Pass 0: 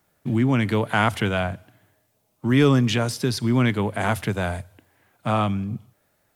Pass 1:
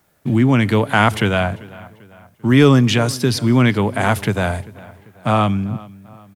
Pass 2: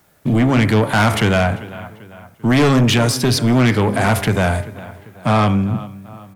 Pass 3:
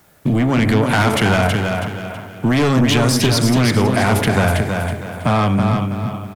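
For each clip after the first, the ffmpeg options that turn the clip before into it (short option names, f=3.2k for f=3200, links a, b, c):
-filter_complex "[0:a]asplit=2[a][b];[b]adelay=393,lowpass=f=3.5k:p=1,volume=-20.5dB,asplit=2[c][d];[d]adelay=393,lowpass=f=3.5k:p=1,volume=0.46,asplit=2[e][f];[f]adelay=393,lowpass=f=3.5k:p=1,volume=0.46[g];[a][c][e][g]amix=inputs=4:normalize=0,volume=6dB"
-af "bandreject=f=67.8:t=h:w=4,bandreject=f=135.6:t=h:w=4,bandreject=f=203.4:t=h:w=4,bandreject=f=271.2:t=h:w=4,bandreject=f=339:t=h:w=4,bandreject=f=406.8:t=h:w=4,bandreject=f=474.6:t=h:w=4,bandreject=f=542.4:t=h:w=4,bandreject=f=610.2:t=h:w=4,bandreject=f=678:t=h:w=4,bandreject=f=745.8:t=h:w=4,bandreject=f=813.6:t=h:w=4,bandreject=f=881.4:t=h:w=4,bandreject=f=949.2:t=h:w=4,bandreject=f=1.017k:t=h:w=4,bandreject=f=1.0848k:t=h:w=4,bandreject=f=1.1526k:t=h:w=4,bandreject=f=1.2204k:t=h:w=4,bandreject=f=1.2882k:t=h:w=4,bandreject=f=1.356k:t=h:w=4,bandreject=f=1.4238k:t=h:w=4,bandreject=f=1.4916k:t=h:w=4,bandreject=f=1.5594k:t=h:w=4,bandreject=f=1.6272k:t=h:w=4,bandreject=f=1.695k:t=h:w=4,bandreject=f=1.7628k:t=h:w=4,bandreject=f=1.8306k:t=h:w=4,bandreject=f=1.8984k:t=h:w=4,bandreject=f=1.9662k:t=h:w=4,bandreject=f=2.034k:t=h:w=4,bandreject=f=2.1018k:t=h:w=4,bandreject=f=2.1696k:t=h:w=4,bandreject=f=2.2374k:t=h:w=4,bandreject=f=2.3052k:t=h:w=4,bandreject=f=2.373k:t=h:w=4,bandreject=f=2.4408k:t=h:w=4,bandreject=f=2.5086k:t=h:w=4,asoftclip=type=tanh:threshold=-15dB,volume=5.5dB"
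-filter_complex "[0:a]acompressor=threshold=-17dB:ratio=6,asplit=2[a][b];[b]aecho=0:1:324|648|972|1296:0.562|0.197|0.0689|0.0241[c];[a][c]amix=inputs=2:normalize=0,volume=3.5dB"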